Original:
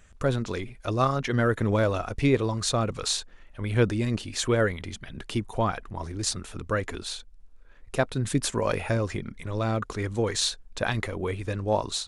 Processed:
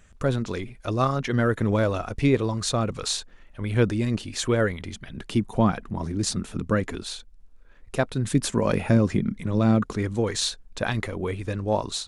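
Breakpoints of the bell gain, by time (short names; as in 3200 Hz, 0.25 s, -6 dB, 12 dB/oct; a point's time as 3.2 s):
bell 200 Hz 1.4 oct
5.09 s +3 dB
5.64 s +12.5 dB
6.71 s +12.5 dB
7.12 s +3 dB
8.2 s +3 dB
8.89 s +14 dB
9.73 s +14 dB
10.24 s +3.5 dB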